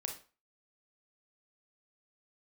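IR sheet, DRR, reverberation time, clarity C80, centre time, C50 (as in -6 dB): 3.0 dB, 0.35 s, 14.0 dB, 18 ms, 8.0 dB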